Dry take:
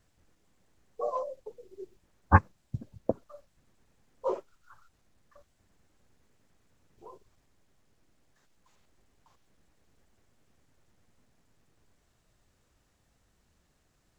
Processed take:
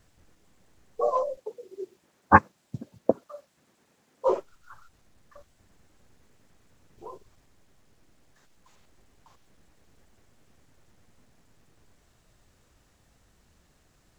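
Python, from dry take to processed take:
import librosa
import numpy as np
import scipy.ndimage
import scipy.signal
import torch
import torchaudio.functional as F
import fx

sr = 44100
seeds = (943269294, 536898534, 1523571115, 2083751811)

y = fx.highpass(x, sr, hz=200.0, slope=12, at=(1.37, 4.28))
y = y * librosa.db_to_amplitude(7.0)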